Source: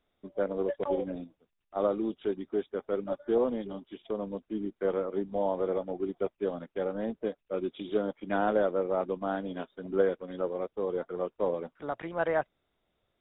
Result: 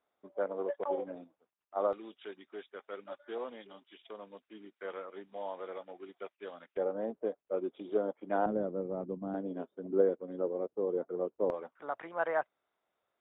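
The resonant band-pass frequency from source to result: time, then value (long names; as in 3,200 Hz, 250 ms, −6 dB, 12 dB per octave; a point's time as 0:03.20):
resonant band-pass, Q 0.93
940 Hz
from 0:01.93 2,300 Hz
from 0:06.77 620 Hz
from 0:08.46 180 Hz
from 0:09.34 360 Hz
from 0:11.50 1,100 Hz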